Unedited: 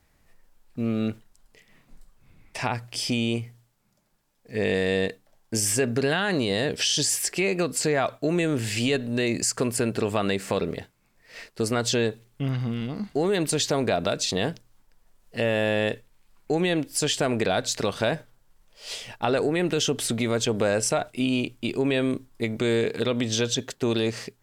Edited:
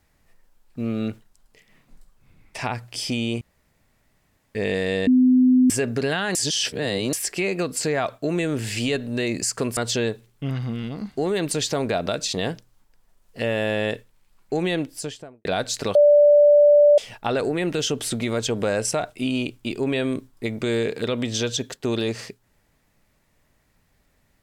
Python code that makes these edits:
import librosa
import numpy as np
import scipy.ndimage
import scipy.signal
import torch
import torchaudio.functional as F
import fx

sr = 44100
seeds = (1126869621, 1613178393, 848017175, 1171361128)

y = fx.studio_fade_out(x, sr, start_s=16.71, length_s=0.72)
y = fx.edit(y, sr, fx.room_tone_fill(start_s=3.41, length_s=1.14),
    fx.bleep(start_s=5.07, length_s=0.63, hz=254.0, db=-12.0),
    fx.reverse_span(start_s=6.35, length_s=0.78),
    fx.cut(start_s=9.77, length_s=1.98),
    fx.bleep(start_s=17.93, length_s=1.03, hz=586.0, db=-10.0), tone=tone)